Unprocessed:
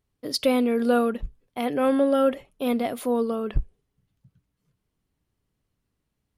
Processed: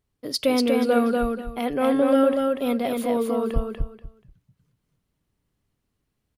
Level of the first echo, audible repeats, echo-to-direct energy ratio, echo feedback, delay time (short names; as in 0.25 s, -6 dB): -3.0 dB, 3, -3.0 dB, 22%, 0.241 s